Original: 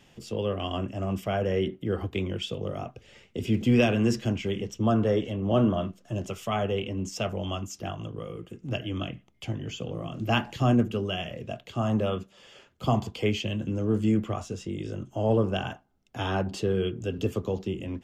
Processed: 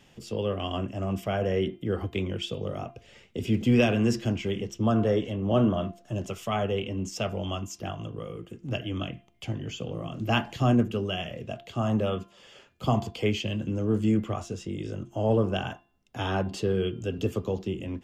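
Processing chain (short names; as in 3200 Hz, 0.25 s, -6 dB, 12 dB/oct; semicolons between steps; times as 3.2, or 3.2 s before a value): de-hum 345.3 Hz, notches 15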